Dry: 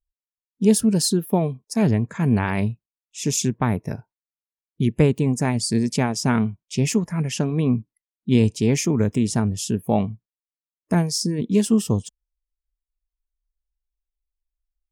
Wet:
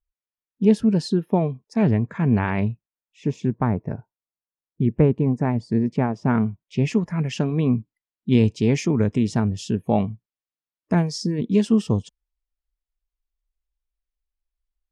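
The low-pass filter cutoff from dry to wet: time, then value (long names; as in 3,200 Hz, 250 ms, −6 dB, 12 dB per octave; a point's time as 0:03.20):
0:02.67 2,800 Hz
0:03.34 1,400 Hz
0:06.20 1,400 Hz
0:06.80 2,600 Hz
0:07.08 4,200 Hz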